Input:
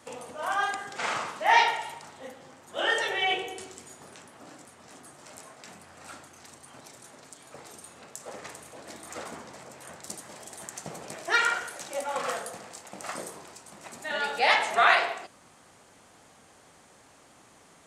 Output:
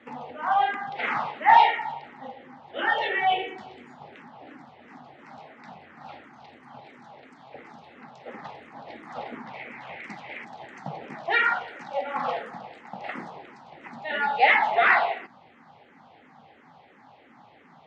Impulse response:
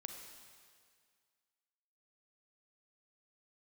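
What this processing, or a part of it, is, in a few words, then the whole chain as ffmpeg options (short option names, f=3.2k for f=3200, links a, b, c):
barber-pole phaser into a guitar amplifier: -filter_complex "[0:a]asettb=1/sr,asplit=3[a][b][c];[a]atrim=end=9.464[d];[b]atrim=start=9.46:end=10.45,asetpts=PTS-STARTPTS,afade=t=in:d=0.004:c=qsin,afade=t=out:st=0.986:d=0.004:c=qsin,equalizer=f=2.3k:t=o:w=0.81:g=14.5[e];[c]atrim=start=10.446[f];[d][e]acrossfade=d=0.004:c1=hsin:c2=qsin[g];[g][f]acrossfade=d=0.004:c1=qsin:c2=hsin,asplit=2[h][i];[i]afreqshift=-2.9[j];[h][j]amix=inputs=2:normalize=1,asoftclip=type=tanh:threshold=-14.5dB,highpass=98,equalizer=f=150:t=q:w=4:g=6,equalizer=f=240:t=q:w=4:g=8,equalizer=f=820:t=q:w=4:g=10,equalizer=f=2k:t=q:w=4:g=5,lowpass=f=3.6k:w=0.5412,lowpass=f=3.6k:w=1.3066,volume=2.5dB"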